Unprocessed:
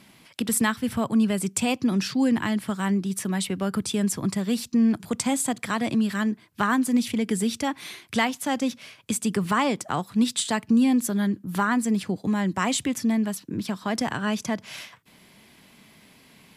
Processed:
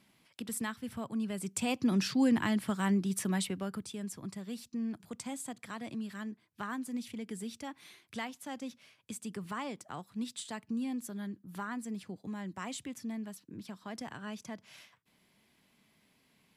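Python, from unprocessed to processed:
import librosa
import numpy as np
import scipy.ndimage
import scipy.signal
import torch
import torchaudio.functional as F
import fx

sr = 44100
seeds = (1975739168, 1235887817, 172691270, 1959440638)

y = fx.gain(x, sr, db=fx.line((1.22, -14.0), (1.93, -5.0), (3.35, -5.0), (3.92, -16.0)))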